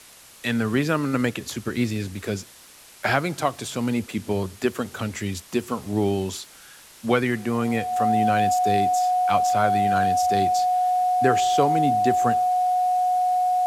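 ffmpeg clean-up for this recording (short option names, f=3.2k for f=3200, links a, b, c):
-af "adeclick=t=4,bandreject=f=730:w=30,afwtdn=0.005"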